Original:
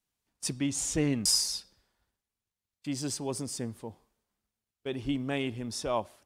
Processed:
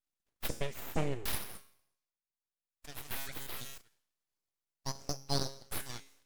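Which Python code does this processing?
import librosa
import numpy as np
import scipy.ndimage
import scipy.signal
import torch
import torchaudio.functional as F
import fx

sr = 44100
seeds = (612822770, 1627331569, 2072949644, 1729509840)

p1 = fx.filter_sweep_highpass(x, sr, from_hz=93.0, to_hz=2300.0, start_s=0.86, end_s=3.8, q=2.9)
p2 = fx.rider(p1, sr, range_db=3, speed_s=2.0)
p3 = p2 + fx.echo_feedback(p2, sr, ms=121, feedback_pct=53, wet_db=-24.0, dry=0)
p4 = fx.transient(p3, sr, attack_db=8, sustain_db=-6)
p5 = fx.comb_fb(p4, sr, f0_hz=68.0, decay_s=0.61, harmonics='odd', damping=0.0, mix_pct=70)
p6 = np.abs(p5)
p7 = fx.sustainer(p6, sr, db_per_s=40.0, at=(3.11, 3.78))
y = p7 * 10.0 ** (2.5 / 20.0)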